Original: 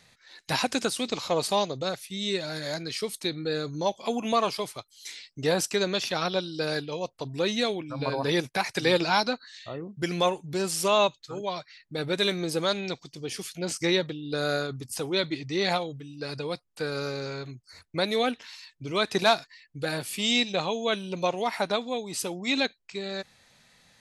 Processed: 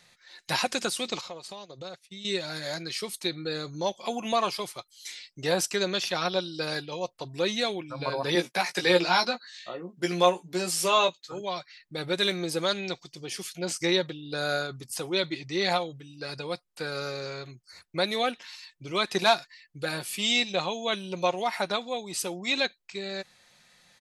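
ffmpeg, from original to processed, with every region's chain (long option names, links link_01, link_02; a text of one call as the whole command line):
ffmpeg -i in.wav -filter_complex "[0:a]asettb=1/sr,asplit=3[link_01][link_02][link_03];[link_01]atrim=end=1.214[link_04];[link_02]atrim=start=1.21:end=2.25,asetpts=PTS-STARTPTS,afade=type=in:duration=0.004:curve=qsin,afade=type=out:start_time=1.036:duration=0.004:curve=qsin,lowpass=8300,acompressor=threshold=-34dB:ratio=12:attack=3.2:release=140:knee=1:detection=peak,agate=range=-33dB:threshold=-37dB:ratio=3:release=100:detection=peak[link_05];[link_03]atrim=start=2.246[link_06];[link_04][link_05]acrossfade=duration=0.004:curve1=hsin:curve2=qsin[link_07];[link_07][link_06]acrossfade=duration=0.004:curve1=qsin:curve2=hsin,asettb=1/sr,asplit=3[link_08][link_09][link_10];[link_08]atrim=end=8.354[link_11];[link_09]atrim=start=8.35:end=11.32,asetpts=PTS-STARTPTS,afade=type=in:duration=0.004:curve=qsin,afade=type=out:start_time=2.966:duration=0.004:curve=qsin,highpass=frequency=170:width=0.5412,highpass=frequency=170:width=1.3066,asplit=2[link_12][link_13];[link_13]adelay=17,volume=-5.5dB[link_14];[link_12][link_14]amix=inputs=2:normalize=0,atrim=end_sample=130977[link_15];[link_10]atrim=start=11.316[link_16];[link_11][link_15]acrossfade=duration=0.004:curve1=hsin:curve2=qsin[link_17];[link_17][link_16]acrossfade=duration=0.004:curve1=qsin:curve2=hsin,lowshelf=frequency=360:gain=-6,aecho=1:1:5.6:0.35" out.wav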